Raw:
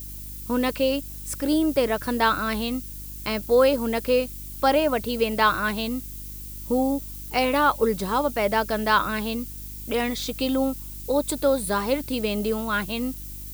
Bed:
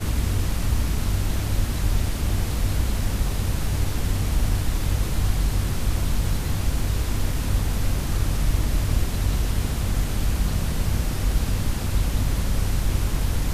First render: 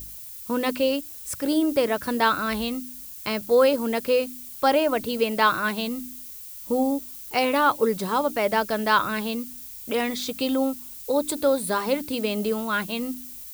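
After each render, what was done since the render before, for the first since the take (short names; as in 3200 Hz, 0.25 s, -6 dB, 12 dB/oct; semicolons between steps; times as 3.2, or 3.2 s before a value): de-hum 50 Hz, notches 7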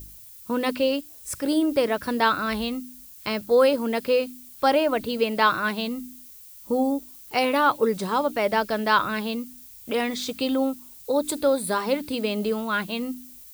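noise print and reduce 6 dB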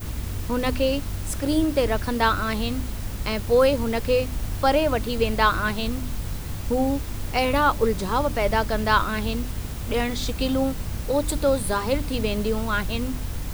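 add bed -7 dB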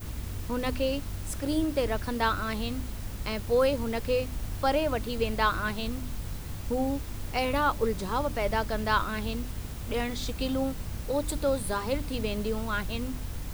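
gain -6 dB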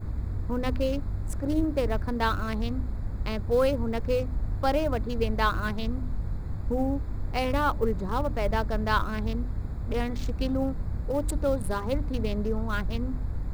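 Wiener smoothing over 15 samples; low shelf 170 Hz +6 dB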